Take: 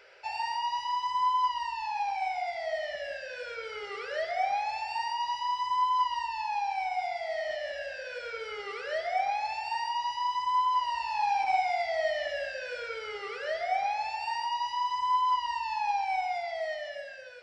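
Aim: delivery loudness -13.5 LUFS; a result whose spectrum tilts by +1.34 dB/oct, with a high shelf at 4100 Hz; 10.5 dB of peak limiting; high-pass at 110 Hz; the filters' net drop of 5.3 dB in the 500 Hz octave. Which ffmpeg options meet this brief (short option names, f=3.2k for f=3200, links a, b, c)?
-af "highpass=110,equalizer=f=500:t=o:g=-8,highshelf=f=4.1k:g=6.5,volume=22.5dB,alimiter=limit=-6.5dB:level=0:latency=1"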